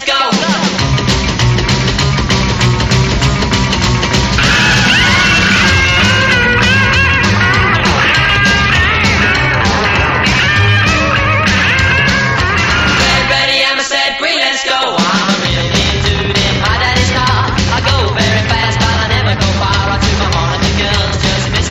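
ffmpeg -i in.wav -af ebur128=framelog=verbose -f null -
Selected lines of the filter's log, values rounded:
Integrated loudness:
  I:         -10.1 LUFS
  Threshold: -20.0 LUFS
Loudness range:
  LRA:         3.5 LU
  Threshold: -29.8 LUFS
  LRA low:   -11.5 LUFS
  LRA high:   -8.0 LUFS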